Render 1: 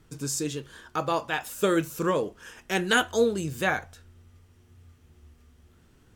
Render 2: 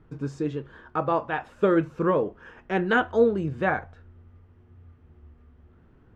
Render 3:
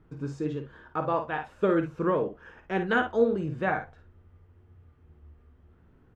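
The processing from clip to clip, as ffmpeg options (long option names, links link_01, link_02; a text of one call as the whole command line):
ffmpeg -i in.wav -af "lowpass=1500,volume=3dB" out.wav
ffmpeg -i in.wav -af "aecho=1:1:52|65:0.376|0.126,volume=-3.5dB" out.wav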